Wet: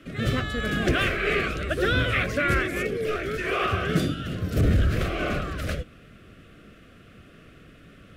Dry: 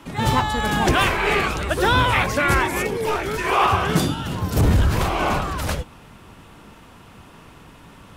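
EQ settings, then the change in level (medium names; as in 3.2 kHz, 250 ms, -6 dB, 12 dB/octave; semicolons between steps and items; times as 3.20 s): Butterworth band-stop 910 Hz, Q 1.5; tone controls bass -1 dB, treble -9 dB; -3.0 dB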